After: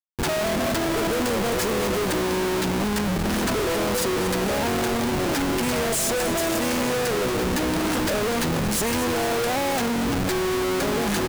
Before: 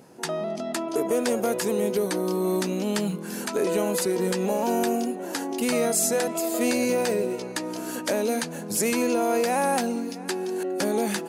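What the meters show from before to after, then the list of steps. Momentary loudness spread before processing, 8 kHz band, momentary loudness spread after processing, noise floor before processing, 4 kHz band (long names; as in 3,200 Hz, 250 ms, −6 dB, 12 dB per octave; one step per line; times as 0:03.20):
7 LU, +1.0 dB, 1 LU, −36 dBFS, +6.5 dB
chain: comparator with hysteresis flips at −35.5 dBFS
echo with shifted repeats 233 ms, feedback 57%, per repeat −110 Hz, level −12 dB
level +2 dB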